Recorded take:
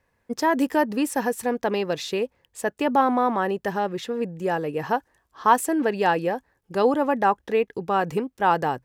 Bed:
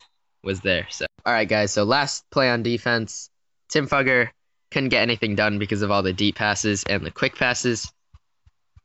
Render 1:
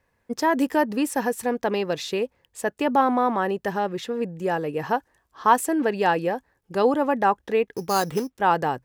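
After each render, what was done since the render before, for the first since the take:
0:07.75–0:08.35: sample-rate reduction 5,600 Hz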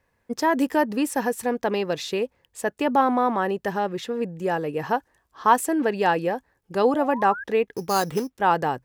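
0:06.89–0:07.44: sound drawn into the spectrogram rise 530–1,700 Hz −34 dBFS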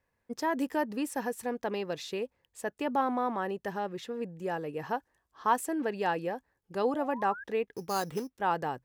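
level −9 dB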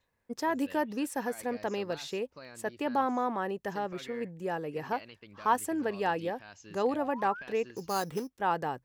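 mix in bed −29.5 dB

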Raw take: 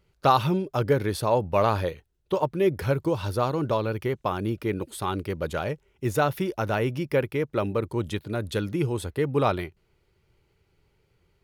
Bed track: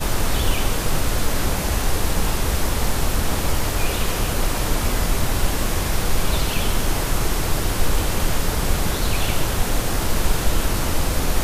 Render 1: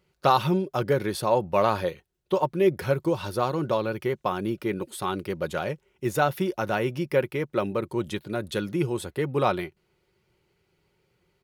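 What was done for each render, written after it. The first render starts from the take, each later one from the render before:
high-pass filter 130 Hz 6 dB per octave
comb filter 5.5 ms, depth 33%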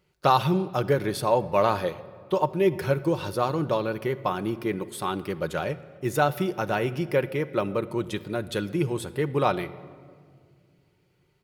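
rectangular room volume 3,400 cubic metres, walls mixed, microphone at 0.45 metres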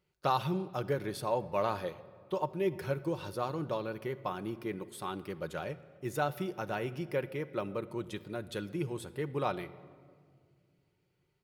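level −9.5 dB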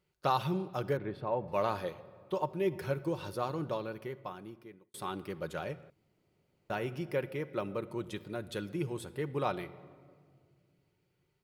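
0:00.97–0:01.48: high-frequency loss of the air 450 metres
0:03.62–0:04.94: fade out
0:05.90–0:06.70: fill with room tone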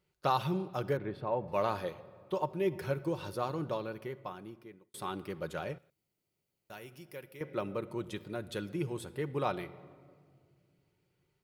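0:05.78–0:07.41: first-order pre-emphasis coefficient 0.8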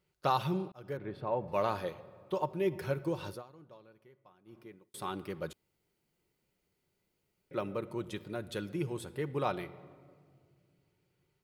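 0:00.72–0:01.41: fade in equal-power
0:03.30–0:04.58: duck −19.5 dB, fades 0.13 s
0:05.53–0:07.51: fill with room tone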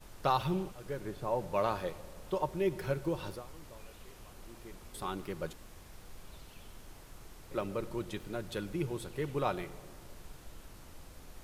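mix in bed track −31 dB

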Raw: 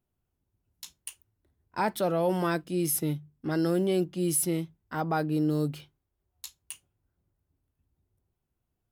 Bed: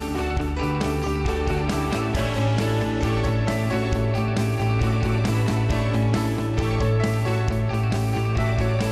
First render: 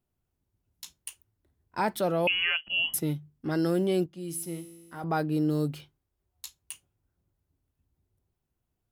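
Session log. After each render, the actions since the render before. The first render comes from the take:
0:02.27–0:02.94: voice inversion scrambler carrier 3,100 Hz
0:04.06–0:05.04: tuned comb filter 56 Hz, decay 1.7 s, mix 70%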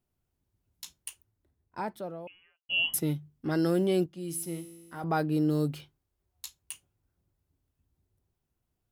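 0:00.98–0:02.69: fade out and dull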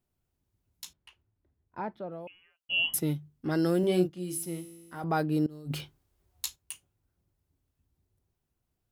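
0:00.93–0:02.12: high-frequency loss of the air 310 metres
0:03.80–0:04.38: double-tracking delay 33 ms −5.5 dB
0:05.46–0:06.56: compressor whose output falls as the input rises −35 dBFS, ratio −0.5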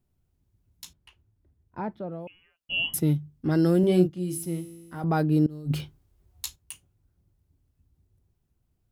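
low-shelf EQ 290 Hz +10.5 dB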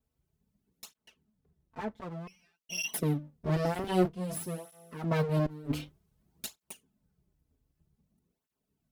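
lower of the sound and its delayed copy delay 4.6 ms
through-zero flanger with one copy inverted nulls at 0.53 Hz, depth 5.8 ms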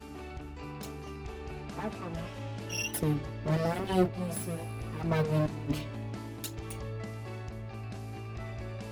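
mix in bed −18 dB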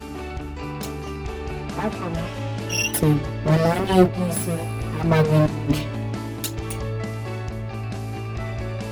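level +11 dB

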